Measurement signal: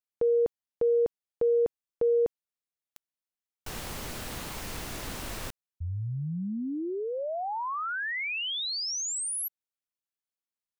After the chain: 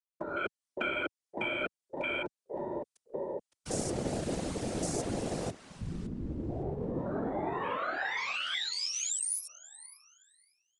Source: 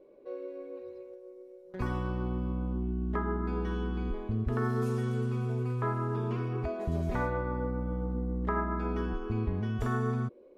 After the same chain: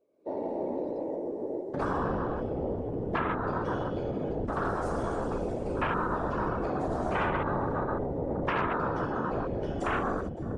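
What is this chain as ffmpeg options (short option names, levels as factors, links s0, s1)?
-filter_complex "[0:a]dynaudnorm=f=120:g=5:m=5.96,asplit=2[s0][s1];[s1]adelay=562,lowpass=f=2600:p=1,volume=0.211,asplit=2[s2][s3];[s3]adelay=562,lowpass=f=2600:p=1,volume=0.37,asplit=2[s4][s5];[s5]adelay=562,lowpass=f=2600:p=1,volume=0.37,asplit=2[s6][s7];[s7]adelay=562,lowpass=f=2600:p=1,volume=0.37[s8];[s2][s4][s6][s8]amix=inputs=4:normalize=0[s9];[s0][s9]amix=inputs=2:normalize=0,aeval=exprs='0.668*(cos(1*acos(clip(val(0)/0.668,-1,1)))-cos(1*PI/2))+0.168*(cos(5*acos(clip(val(0)/0.668,-1,1)))-cos(5*PI/2))':c=same,bass=f=250:g=-2,treble=f=4000:g=13,alimiter=limit=0.596:level=0:latency=1:release=13,highpass=f=110:w=0.5412,highpass=f=110:w=1.3066,afwtdn=0.126,highshelf=f=4700:g=-6,aresample=22050,aresample=44100,acrossover=split=140|340|2300[s10][s11][s12][s13];[s10]acompressor=threshold=0.0251:ratio=2[s14];[s11]acompressor=threshold=0.0251:ratio=2[s15];[s12]acompressor=threshold=0.0708:ratio=2.5[s16];[s13]acompressor=threshold=0.00501:ratio=1.5[s17];[s14][s15][s16][s17]amix=inputs=4:normalize=0,afftfilt=real='hypot(re,im)*cos(2*PI*random(0))':imag='hypot(re,im)*sin(2*PI*random(1))':win_size=512:overlap=0.75,afftfilt=real='re*lt(hypot(re,im),0.251)':imag='im*lt(hypot(re,im),0.251)':win_size=1024:overlap=0.75"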